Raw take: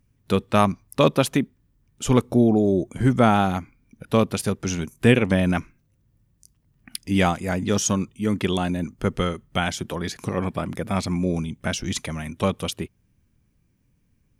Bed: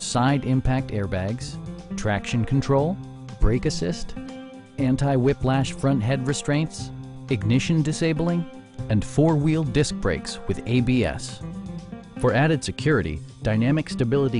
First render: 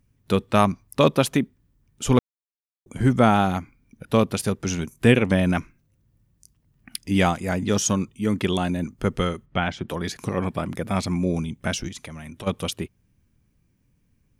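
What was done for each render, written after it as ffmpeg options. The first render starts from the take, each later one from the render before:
-filter_complex "[0:a]asplit=3[a][b][c];[a]afade=t=out:st=9.45:d=0.02[d];[b]lowpass=2.9k,afade=t=in:st=9.45:d=0.02,afade=t=out:st=9.88:d=0.02[e];[c]afade=t=in:st=9.88:d=0.02[f];[d][e][f]amix=inputs=3:normalize=0,asplit=3[g][h][i];[g]afade=t=out:st=11.87:d=0.02[j];[h]acompressor=threshold=-34dB:ratio=6:attack=3.2:release=140:knee=1:detection=peak,afade=t=in:st=11.87:d=0.02,afade=t=out:st=12.46:d=0.02[k];[i]afade=t=in:st=12.46:d=0.02[l];[j][k][l]amix=inputs=3:normalize=0,asplit=3[m][n][o];[m]atrim=end=2.19,asetpts=PTS-STARTPTS,afade=t=out:st=2.186:d=0.004:c=hsin[p];[n]atrim=start=2.19:end=2.86,asetpts=PTS-STARTPTS,volume=0[q];[o]atrim=start=2.86,asetpts=PTS-STARTPTS,afade=t=in:d=0.004:c=hsin[r];[p][q][r]concat=n=3:v=0:a=1"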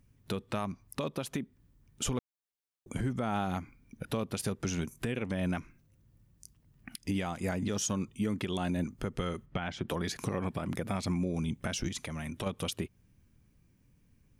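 -af "acompressor=threshold=-26dB:ratio=12,alimiter=limit=-22.5dB:level=0:latency=1:release=158"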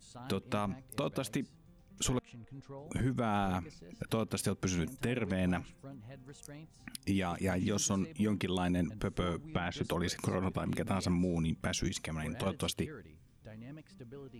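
-filter_complex "[1:a]volume=-28dB[a];[0:a][a]amix=inputs=2:normalize=0"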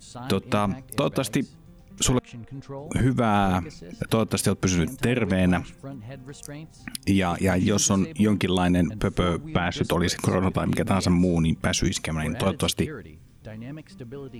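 -af "volume=11dB"

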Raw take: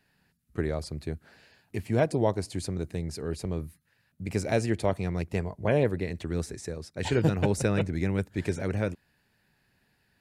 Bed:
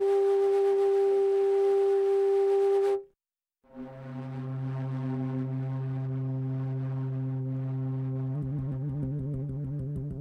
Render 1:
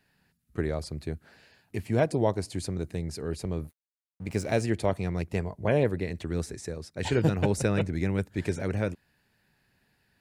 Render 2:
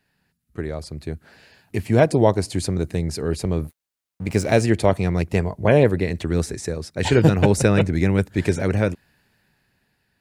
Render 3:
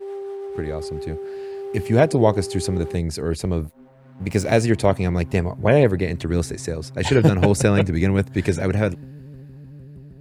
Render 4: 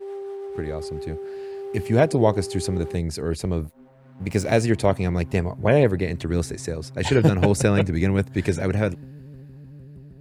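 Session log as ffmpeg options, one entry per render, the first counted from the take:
-filter_complex "[0:a]asettb=1/sr,asplit=3[a][b][c];[a]atrim=end=3.644[d];[b]atrim=start=3.64:end=4.61,asetpts=PTS-STARTPTS,afade=t=in:d=0.004:c=qsin,afade=t=out:st=0.966:d=0.004:c=qsin,aeval=exprs='sgn(val(0))*max(abs(val(0))-0.00355,0)':c=same[e];[c]atrim=start=4.606[f];[d][e]acrossfade=d=0.004:c1=hsin:c2=qsin[g];[g][f]acrossfade=d=0.004:c1=qsin:c2=hsin"
-af "dynaudnorm=f=230:g=11:m=11dB"
-filter_complex "[1:a]volume=-7dB[a];[0:a][a]amix=inputs=2:normalize=0"
-af "volume=-2dB"

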